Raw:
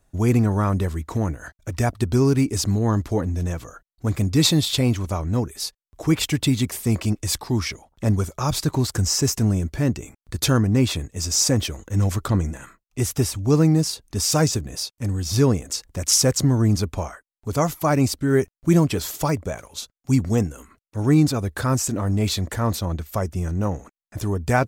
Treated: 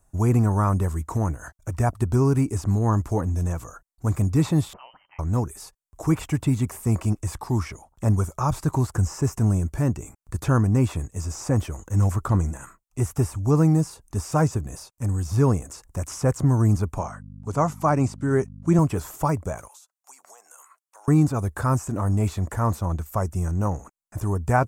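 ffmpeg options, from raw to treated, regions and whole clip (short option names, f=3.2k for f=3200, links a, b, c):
-filter_complex "[0:a]asettb=1/sr,asplit=3[a][b][c];[a]atrim=end=4.734[d];[b]atrim=start=4.73:end=5.19,asetpts=PTS-STARTPTS,afade=t=in:d=0.004:c=qsin,afade=t=out:st=0.456:d=0.004:c=qsin,aderivative,lowpass=f=2.7k:t=q:w=0.5098,lowpass=f=2.7k:t=q:w=0.6013,lowpass=f=2.7k:t=q:w=0.9,lowpass=f=2.7k:t=q:w=2.563,afreqshift=-3200[e];[c]atrim=start=5.186[f];[d][e]acrossfade=d=0.004:c1=hsin:c2=qsin[g];[g][f]acrossfade=d=0.004:c1=qsin:c2=hsin,asettb=1/sr,asplit=3[h][i][j];[h]atrim=end=16.984[k];[i]atrim=start=16.98:end=18.79,asetpts=PTS-STARTPTS,afade=t=in:d=0.004:c=qsin,afade=t=out:st=1.806:d=0.004:c=qsin,aeval=exprs='val(0)+0.0224*(sin(2*PI*50*n/s)+sin(2*PI*2*50*n/s)/2+sin(2*PI*3*50*n/s)/3+sin(2*PI*4*50*n/s)/4+sin(2*PI*5*50*n/s)/5)':c=same,highpass=110,lowpass=6.8k[l];[j]atrim=start=18.786[m];[k][l]acrossfade=d=0.004:c1=hsin:c2=qsin[n];[n][m]acrossfade=d=0.004:c1=qsin:c2=hsin,asettb=1/sr,asplit=3[o][p][q];[o]atrim=end=19.684[r];[p]atrim=start=19.68:end=21.08,asetpts=PTS-STARTPTS,afade=t=in:d=0.004:c=qsin,afade=t=out:st=1.396:d=0.004:c=qsin,highpass=f=680:w=0.5412,highpass=f=680:w=1.3066,acompressor=threshold=-45dB:ratio=20:attack=3.2:release=140:knee=1:detection=peak[s];[q]atrim=start=21.076[t];[r][s]acrossfade=d=0.004:c1=hsin:c2=qsin[u];[u][t]acrossfade=d=0.004:c1=qsin:c2=hsin,bandreject=f=3.2k:w=27,acrossover=split=2700[v][w];[w]acompressor=threshold=-41dB:ratio=4:attack=1:release=60[x];[v][x]amix=inputs=2:normalize=0,equalizer=f=250:t=o:w=1:g=-4,equalizer=f=500:t=o:w=1:g=-4,equalizer=f=1k:t=o:w=1:g=4,equalizer=f=2k:t=o:w=1:g=-6,equalizer=f=4k:t=o:w=1:g=-11,equalizer=f=8k:t=o:w=1:g=6,volume=1dB"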